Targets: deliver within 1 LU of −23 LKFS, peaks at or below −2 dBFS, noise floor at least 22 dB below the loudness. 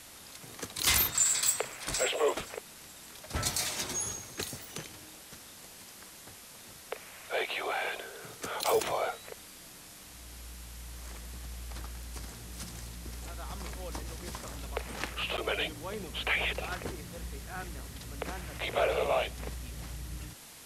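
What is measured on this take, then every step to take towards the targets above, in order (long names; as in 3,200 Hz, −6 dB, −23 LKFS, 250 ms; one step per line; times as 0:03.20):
number of dropouts 1; longest dropout 9.1 ms; background noise floor −51 dBFS; target noise floor −55 dBFS; integrated loudness −33.0 LKFS; sample peak −14.5 dBFS; target loudness −23.0 LKFS
→ repair the gap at 0:15.37, 9.1 ms
broadband denoise 6 dB, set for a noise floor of −51 dBFS
level +10 dB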